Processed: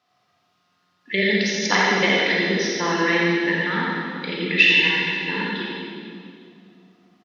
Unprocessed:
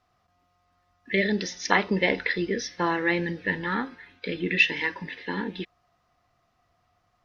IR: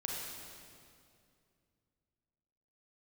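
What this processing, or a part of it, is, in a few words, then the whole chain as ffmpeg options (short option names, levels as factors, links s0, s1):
PA in a hall: -filter_complex "[0:a]highpass=f=130:w=0.5412,highpass=f=130:w=1.3066,equalizer=f=3600:t=o:w=1.5:g=7,aecho=1:1:85:0.531[s0];[1:a]atrim=start_sample=2205[s1];[s0][s1]afir=irnorm=-1:irlink=0,volume=1.12"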